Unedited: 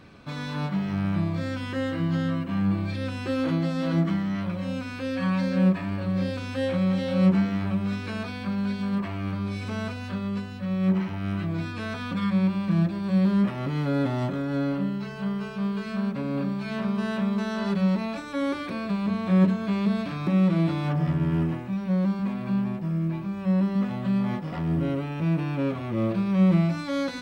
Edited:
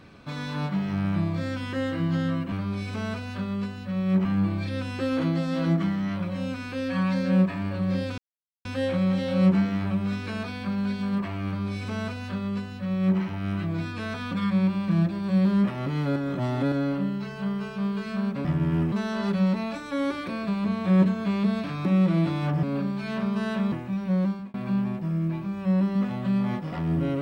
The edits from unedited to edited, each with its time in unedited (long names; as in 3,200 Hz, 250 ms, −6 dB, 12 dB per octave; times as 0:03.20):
0:06.45: splice in silence 0.47 s
0:09.26–0:10.99: duplicate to 0:02.52
0:13.96–0:14.52: reverse
0:16.25–0:17.34: swap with 0:21.05–0:21.52
0:22.03–0:22.34: fade out